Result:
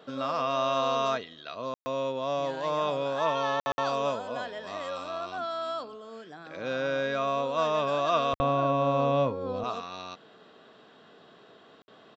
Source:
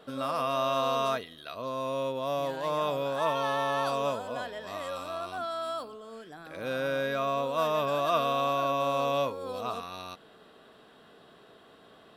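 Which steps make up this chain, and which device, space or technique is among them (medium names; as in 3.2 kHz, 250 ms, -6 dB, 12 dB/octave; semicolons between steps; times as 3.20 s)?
call with lost packets (high-pass 110 Hz; resampled via 16 kHz; lost packets of 60 ms); 8.33–9.64 s: RIAA curve playback; trim +1 dB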